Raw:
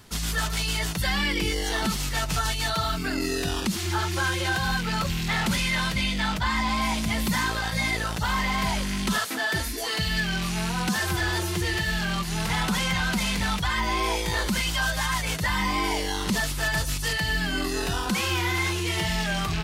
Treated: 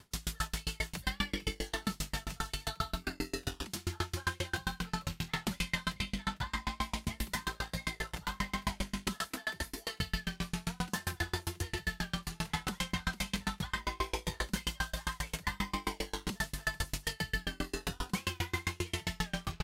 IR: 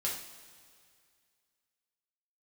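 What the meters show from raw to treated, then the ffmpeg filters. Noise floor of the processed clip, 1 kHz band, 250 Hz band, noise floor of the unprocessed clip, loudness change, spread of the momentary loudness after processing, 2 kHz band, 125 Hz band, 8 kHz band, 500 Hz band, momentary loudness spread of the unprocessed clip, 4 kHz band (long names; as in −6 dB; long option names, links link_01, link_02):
−61 dBFS, −12.0 dB, −11.5 dB, −30 dBFS, −11.5 dB, 3 LU, −12.0 dB, −10.5 dB, −11.0 dB, −11.5 dB, 3 LU, −11.5 dB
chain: -filter_complex "[0:a]aecho=1:1:1029:0.0841,asplit=2[link_01][link_02];[1:a]atrim=start_sample=2205,highshelf=frequency=11000:gain=6[link_03];[link_02][link_03]afir=irnorm=-1:irlink=0,volume=-6.5dB[link_04];[link_01][link_04]amix=inputs=2:normalize=0,aeval=exprs='val(0)*pow(10,-36*if(lt(mod(7.5*n/s,1),2*abs(7.5)/1000),1-mod(7.5*n/s,1)/(2*abs(7.5)/1000),(mod(7.5*n/s,1)-2*abs(7.5)/1000)/(1-2*abs(7.5)/1000))/20)':channel_layout=same,volume=-6dB"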